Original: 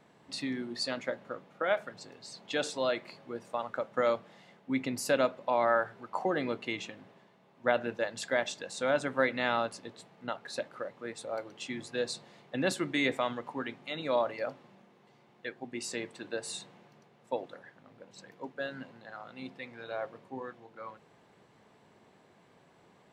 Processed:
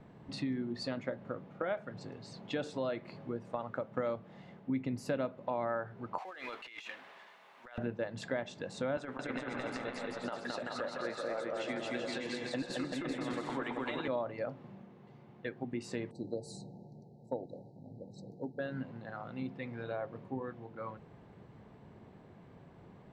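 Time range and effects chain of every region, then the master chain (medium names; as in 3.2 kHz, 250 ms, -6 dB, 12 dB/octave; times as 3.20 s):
6.18–7.78 s: companding laws mixed up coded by mu + high-pass 1.4 kHz + compressor with a negative ratio -46 dBFS
8.97–14.08 s: frequency weighting A + compressor with a negative ratio -37 dBFS, ratio -0.5 + bouncing-ball echo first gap 220 ms, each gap 0.75×, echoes 9, each echo -2 dB
16.11–18.59 s: brick-wall FIR band-stop 930–3800 Hz + peaking EQ 1.8 kHz -9 dB 1.4 oct
whole clip: RIAA curve playback; compression 2.5:1, threshold -37 dBFS; trim +1 dB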